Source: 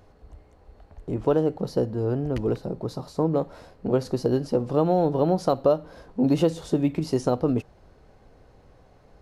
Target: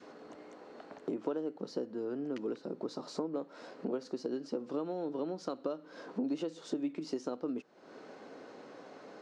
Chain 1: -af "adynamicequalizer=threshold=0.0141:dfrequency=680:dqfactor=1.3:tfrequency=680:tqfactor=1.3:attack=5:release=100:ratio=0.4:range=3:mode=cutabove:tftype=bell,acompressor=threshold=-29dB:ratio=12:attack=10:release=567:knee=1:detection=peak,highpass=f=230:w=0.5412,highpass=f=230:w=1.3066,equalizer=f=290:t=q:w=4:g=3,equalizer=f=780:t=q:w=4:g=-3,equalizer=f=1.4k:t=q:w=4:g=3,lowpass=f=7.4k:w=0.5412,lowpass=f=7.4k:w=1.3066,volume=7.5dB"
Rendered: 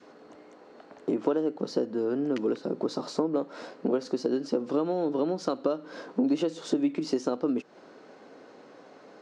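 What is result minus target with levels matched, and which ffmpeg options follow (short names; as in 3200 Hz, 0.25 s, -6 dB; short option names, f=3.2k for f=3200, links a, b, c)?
compressor: peak gain reduction -9 dB
-af "adynamicequalizer=threshold=0.0141:dfrequency=680:dqfactor=1.3:tfrequency=680:tqfactor=1.3:attack=5:release=100:ratio=0.4:range=3:mode=cutabove:tftype=bell,acompressor=threshold=-39dB:ratio=12:attack=10:release=567:knee=1:detection=peak,highpass=f=230:w=0.5412,highpass=f=230:w=1.3066,equalizer=f=290:t=q:w=4:g=3,equalizer=f=780:t=q:w=4:g=-3,equalizer=f=1.4k:t=q:w=4:g=3,lowpass=f=7.4k:w=0.5412,lowpass=f=7.4k:w=1.3066,volume=7.5dB"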